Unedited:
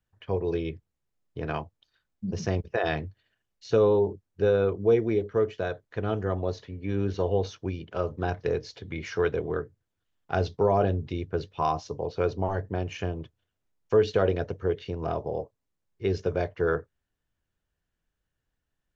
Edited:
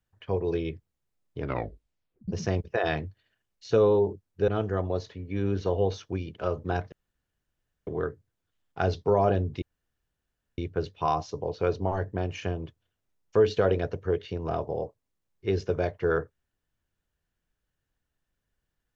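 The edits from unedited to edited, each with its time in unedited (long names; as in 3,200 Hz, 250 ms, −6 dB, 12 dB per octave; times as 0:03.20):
0:01.38: tape stop 0.90 s
0:04.48–0:06.01: remove
0:08.45–0:09.40: fill with room tone
0:11.15: splice in room tone 0.96 s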